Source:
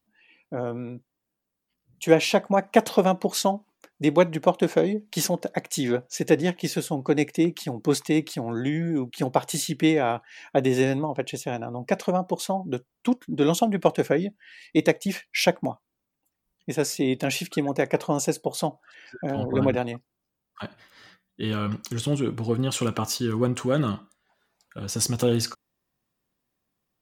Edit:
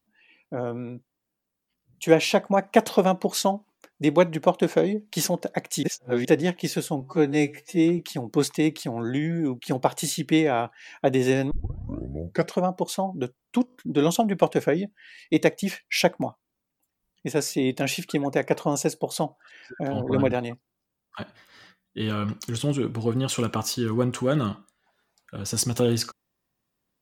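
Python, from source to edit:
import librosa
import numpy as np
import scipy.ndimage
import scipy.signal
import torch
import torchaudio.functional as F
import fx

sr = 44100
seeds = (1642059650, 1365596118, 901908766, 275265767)

y = fx.edit(x, sr, fx.reverse_span(start_s=5.83, length_s=0.42),
    fx.stretch_span(start_s=7.01, length_s=0.49, factor=2.0),
    fx.tape_start(start_s=11.02, length_s=1.06),
    fx.stutter(start_s=13.17, slice_s=0.02, count=5), tone=tone)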